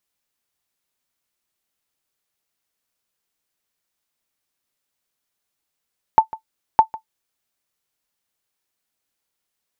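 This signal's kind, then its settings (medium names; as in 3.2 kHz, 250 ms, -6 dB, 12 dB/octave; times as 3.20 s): sonar ping 884 Hz, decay 0.10 s, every 0.61 s, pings 2, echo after 0.15 s, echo -19.5 dB -1 dBFS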